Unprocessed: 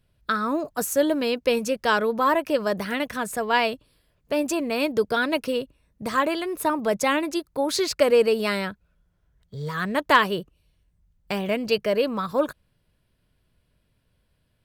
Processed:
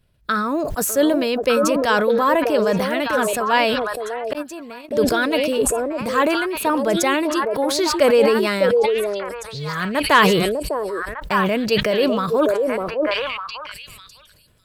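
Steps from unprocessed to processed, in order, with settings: repeats whose band climbs or falls 602 ms, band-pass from 470 Hz, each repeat 1.4 oct, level -2 dB; 4.33–4.91 s: gate -16 dBFS, range -51 dB; decay stretcher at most 29 dB/s; trim +2.5 dB

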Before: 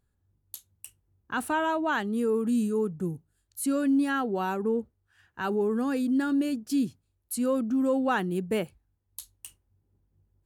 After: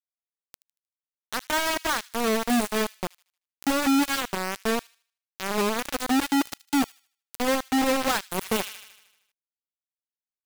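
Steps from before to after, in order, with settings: bit crusher 4-bit; feedback echo behind a high-pass 77 ms, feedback 34%, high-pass 2.6 kHz, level -17.5 dB; 8.41–9.32 s: power-law waveshaper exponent 0.5

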